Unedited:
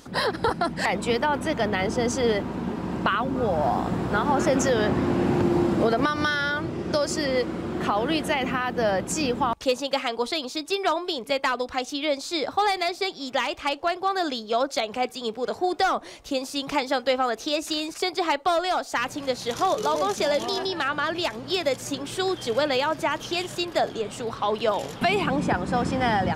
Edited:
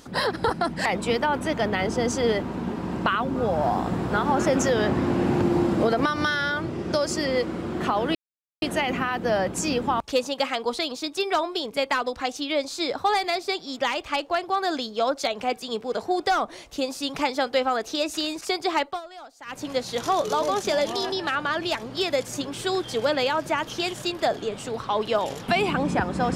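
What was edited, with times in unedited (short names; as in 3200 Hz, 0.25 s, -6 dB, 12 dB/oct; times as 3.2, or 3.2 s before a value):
8.15 insert silence 0.47 s
18.35–19.17 dip -17.5 dB, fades 0.19 s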